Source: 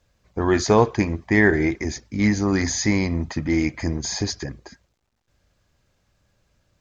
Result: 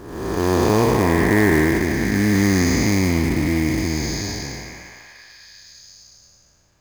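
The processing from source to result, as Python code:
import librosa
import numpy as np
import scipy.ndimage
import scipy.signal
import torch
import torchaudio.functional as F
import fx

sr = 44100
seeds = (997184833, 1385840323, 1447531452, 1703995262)

y = fx.spec_blur(x, sr, span_ms=551.0)
y = fx.echo_stepped(y, sr, ms=344, hz=830.0, octaves=0.7, feedback_pct=70, wet_db=-2.5)
y = fx.quant_float(y, sr, bits=2)
y = y * 10.0 ** (7.0 / 20.0)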